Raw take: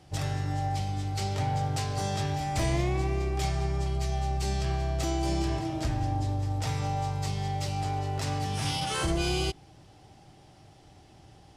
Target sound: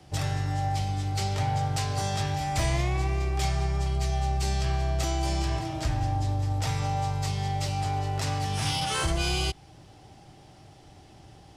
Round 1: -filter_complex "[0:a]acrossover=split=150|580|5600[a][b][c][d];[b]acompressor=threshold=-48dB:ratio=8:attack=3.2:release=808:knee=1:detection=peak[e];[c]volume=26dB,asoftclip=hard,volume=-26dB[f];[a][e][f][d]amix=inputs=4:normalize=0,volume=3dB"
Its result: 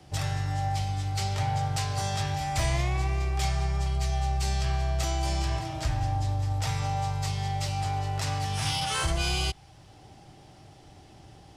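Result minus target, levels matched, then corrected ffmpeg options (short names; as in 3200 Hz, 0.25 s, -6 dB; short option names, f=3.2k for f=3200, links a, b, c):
compressor: peak gain reduction +8.5 dB
-filter_complex "[0:a]acrossover=split=150|580|5600[a][b][c][d];[b]acompressor=threshold=-38.5dB:ratio=8:attack=3.2:release=808:knee=1:detection=peak[e];[c]volume=26dB,asoftclip=hard,volume=-26dB[f];[a][e][f][d]amix=inputs=4:normalize=0,volume=3dB"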